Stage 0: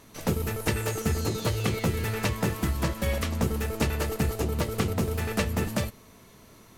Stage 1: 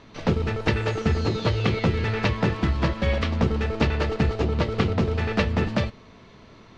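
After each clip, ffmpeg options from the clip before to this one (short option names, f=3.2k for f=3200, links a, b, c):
-af "lowpass=f=4.5k:w=0.5412,lowpass=f=4.5k:w=1.3066,volume=4.5dB"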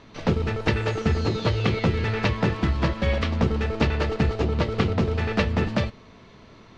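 -af anull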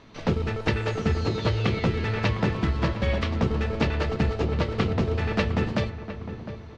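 -filter_complex "[0:a]asplit=2[a][b];[b]adelay=708,lowpass=f=1.6k:p=1,volume=-11dB,asplit=2[c][d];[d]adelay=708,lowpass=f=1.6k:p=1,volume=0.47,asplit=2[e][f];[f]adelay=708,lowpass=f=1.6k:p=1,volume=0.47,asplit=2[g][h];[h]adelay=708,lowpass=f=1.6k:p=1,volume=0.47,asplit=2[i][j];[j]adelay=708,lowpass=f=1.6k:p=1,volume=0.47[k];[a][c][e][g][i][k]amix=inputs=6:normalize=0,volume=-2dB"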